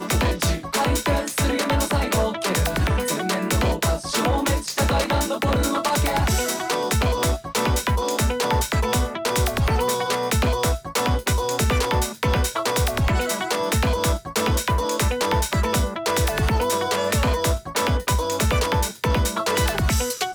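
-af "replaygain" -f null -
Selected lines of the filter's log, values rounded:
track_gain = +5.2 dB
track_peak = 0.127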